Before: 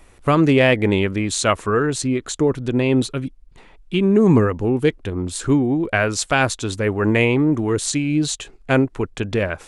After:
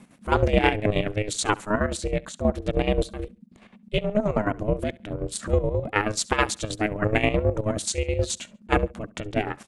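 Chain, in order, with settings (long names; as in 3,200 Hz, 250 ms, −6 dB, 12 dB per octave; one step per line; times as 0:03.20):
square-wave tremolo 9.4 Hz, depth 65%, duty 50%
0:03.98–0:04.46: band-pass filter 350–5,800 Hz
ring modulation 210 Hz
repeating echo 69 ms, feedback 28%, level −23 dB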